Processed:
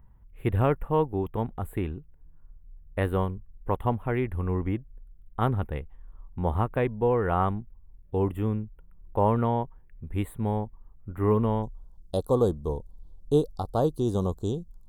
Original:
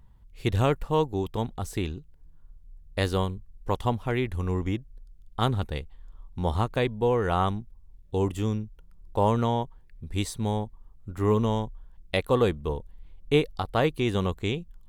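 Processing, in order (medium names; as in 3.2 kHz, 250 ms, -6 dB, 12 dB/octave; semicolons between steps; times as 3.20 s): Butterworth band-stop 5.4 kHz, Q 0.56, from 11.62 s 2.2 kHz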